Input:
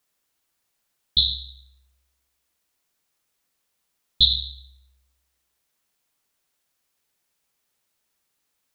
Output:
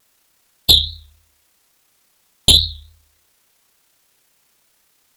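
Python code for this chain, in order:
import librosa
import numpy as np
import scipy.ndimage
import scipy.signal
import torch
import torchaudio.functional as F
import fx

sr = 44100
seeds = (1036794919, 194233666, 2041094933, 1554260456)

y = fx.fold_sine(x, sr, drive_db=12, ceiling_db=-1.5)
y = fx.stretch_grains(y, sr, factor=0.59, grain_ms=62.0)
y = fx.vibrato(y, sr, rate_hz=3.5, depth_cents=88.0)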